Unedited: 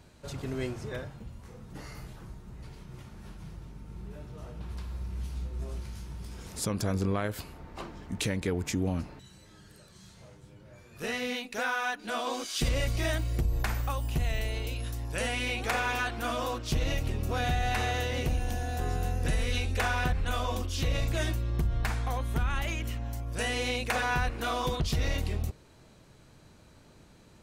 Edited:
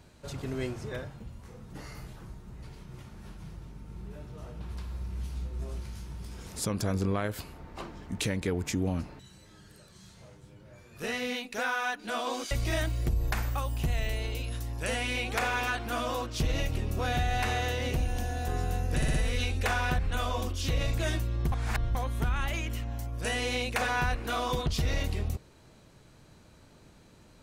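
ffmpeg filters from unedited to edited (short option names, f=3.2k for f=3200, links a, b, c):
-filter_complex "[0:a]asplit=7[a][b][c][d][e][f][g];[a]atrim=end=12.512[h];[b]atrim=start=12.828:end=19.342[i];[c]atrim=start=19.278:end=19.342[j];[d]atrim=start=19.278:end=19.342[k];[e]atrim=start=19.278:end=21.662[l];[f]atrim=start=21.658:end=22.092,asetpts=PTS-STARTPTS,areverse[m];[g]atrim=start=22.088[n];[h][i]acrossfade=d=0.004:c1=hsin:c2=hsin[o];[o][j]acrossfade=d=0.004:c1=hsin:c2=hsin[p];[p][k]acrossfade=d=0.004:c1=hsin:c2=hsin[q];[q][l]acrossfade=d=0.004:c1=hsin:c2=hsin[r];[r][m]acrossfade=d=0.004:c1=hsin:c2=hsin[s];[s][n]acrossfade=d=0.004:c1=hsin:c2=hsin"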